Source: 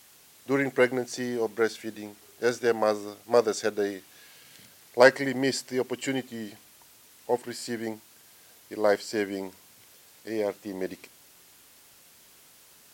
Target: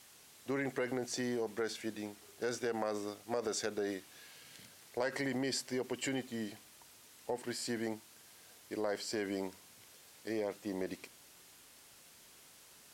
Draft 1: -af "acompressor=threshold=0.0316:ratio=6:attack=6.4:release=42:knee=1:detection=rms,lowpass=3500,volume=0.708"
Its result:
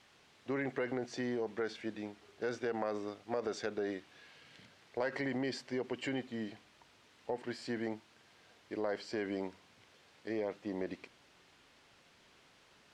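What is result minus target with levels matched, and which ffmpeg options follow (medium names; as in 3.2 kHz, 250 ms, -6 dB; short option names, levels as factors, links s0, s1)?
8 kHz band -12.0 dB
-af "acompressor=threshold=0.0316:ratio=6:attack=6.4:release=42:knee=1:detection=rms,lowpass=13000,volume=0.708"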